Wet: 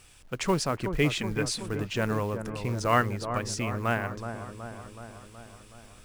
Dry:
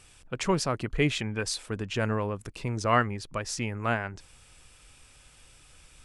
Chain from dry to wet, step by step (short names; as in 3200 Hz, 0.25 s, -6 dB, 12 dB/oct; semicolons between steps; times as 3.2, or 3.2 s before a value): companded quantiser 6-bit; dark delay 0.373 s, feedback 63%, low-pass 1200 Hz, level -8 dB